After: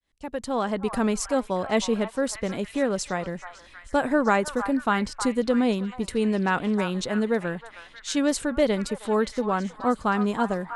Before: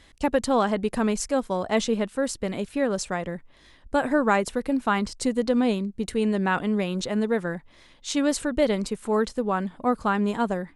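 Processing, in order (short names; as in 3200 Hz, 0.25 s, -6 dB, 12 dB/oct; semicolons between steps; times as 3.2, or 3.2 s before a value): opening faded in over 0.97 s; delay with a stepping band-pass 0.315 s, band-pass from 1100 Hz, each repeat 0.7 oct, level -7.5 dB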